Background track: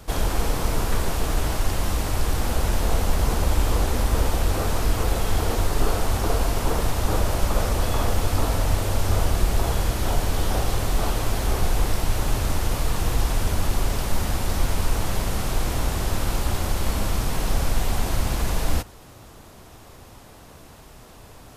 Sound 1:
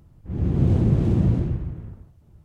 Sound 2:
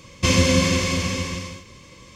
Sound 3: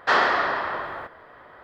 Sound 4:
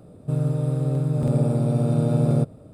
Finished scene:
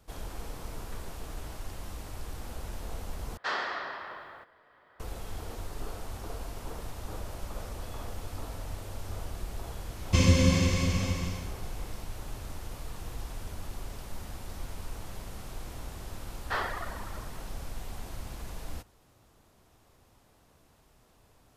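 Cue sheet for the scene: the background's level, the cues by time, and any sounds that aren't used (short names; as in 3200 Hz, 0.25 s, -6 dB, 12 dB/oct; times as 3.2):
background track -17 dB
3.37 replace with 3 -15 dB + high shelf 2700 Hz +9 dB
9.9 add 2 -9.5 dB + low shelf 170 Hz +11 dB
16.43 add 3 -12 dB + reverb removal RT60 1.6 s
not used: 1, 4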